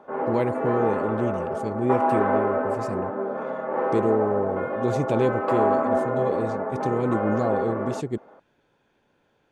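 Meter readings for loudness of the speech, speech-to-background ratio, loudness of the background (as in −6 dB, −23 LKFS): −27.5 LKFS, −1.5 dB, −26.0 LKFS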